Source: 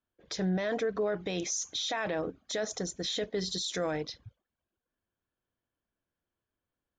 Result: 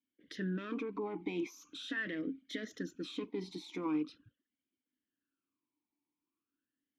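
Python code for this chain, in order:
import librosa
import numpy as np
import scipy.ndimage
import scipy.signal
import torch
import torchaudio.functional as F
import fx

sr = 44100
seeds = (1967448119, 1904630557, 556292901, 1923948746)

y = fx.self_delay(x, sr, depth_ms=0.052)
y = fx.vowel_sweep(y, sr, vowels='i-u', hz=0.42)
y = F.gain(torch.from_numpy(y), 9.0).numpy()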